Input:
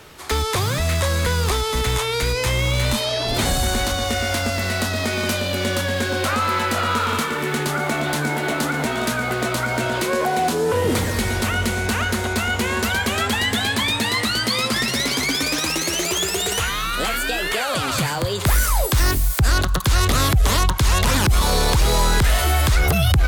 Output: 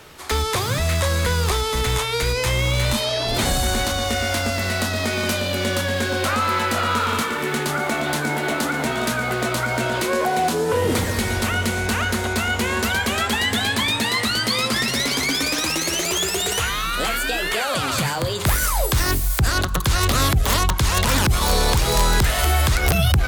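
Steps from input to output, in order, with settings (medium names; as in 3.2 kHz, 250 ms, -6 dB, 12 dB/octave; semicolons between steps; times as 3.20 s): hum notches 50/100/150/200/250/300/350/400/450 Hz; integer overflow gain 9 dB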